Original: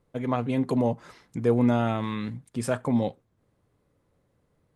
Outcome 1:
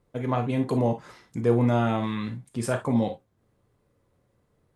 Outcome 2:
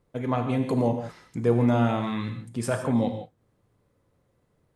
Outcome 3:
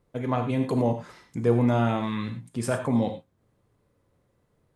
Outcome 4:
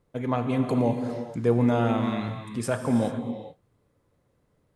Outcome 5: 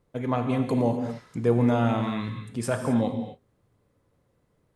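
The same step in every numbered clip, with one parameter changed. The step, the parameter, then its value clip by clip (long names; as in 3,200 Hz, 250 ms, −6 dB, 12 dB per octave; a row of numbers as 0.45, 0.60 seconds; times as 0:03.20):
reverb whose tail is shaped and stops, gate: 80, 190, 130, 460, 280 milliseconds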